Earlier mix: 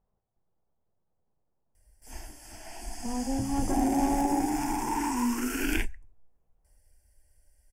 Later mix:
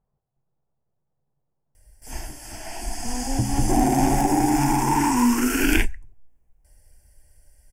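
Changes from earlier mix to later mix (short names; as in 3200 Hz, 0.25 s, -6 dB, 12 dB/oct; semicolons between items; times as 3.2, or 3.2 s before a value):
background +9.0 dB; master: add bell 140 Hz +13.5 dB 0.22 oct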